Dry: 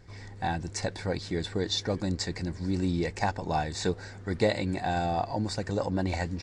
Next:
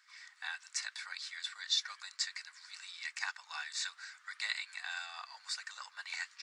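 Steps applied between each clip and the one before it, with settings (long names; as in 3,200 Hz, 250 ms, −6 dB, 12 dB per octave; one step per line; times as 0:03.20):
elliptic high-pass filter 1,200 Hz, stop band 70 dB
level −1 dB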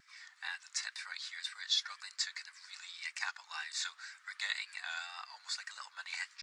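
tape wow and flutter 75 cents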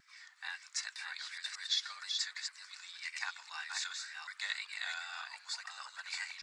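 delay that plays each chunk backwards 389 ms, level −4 dB
level −1.5 dB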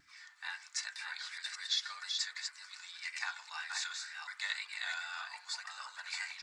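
feedback delay network reverb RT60 0.33 s, low-frequency decay 1.45×, high-frequency decay 0.3×, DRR 5.5 dB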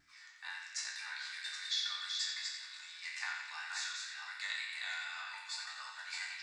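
peak hold with a decay on every bin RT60 0.48 s
feedback echo with a band-pass in the loop 88 ms, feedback 75%, band-pass 2,600 Hz, level −5 dB
level −4.5 dB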